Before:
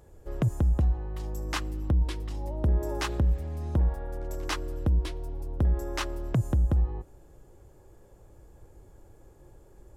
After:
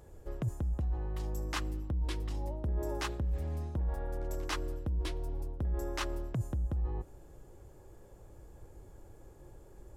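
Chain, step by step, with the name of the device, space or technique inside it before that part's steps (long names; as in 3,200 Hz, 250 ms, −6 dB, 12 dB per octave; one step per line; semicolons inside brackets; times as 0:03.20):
compression on the reversed sound (reversed playback; downward compressor 6 to 1, threshold −31 dBFS, peak gain reduction 10 dB; reversed playback)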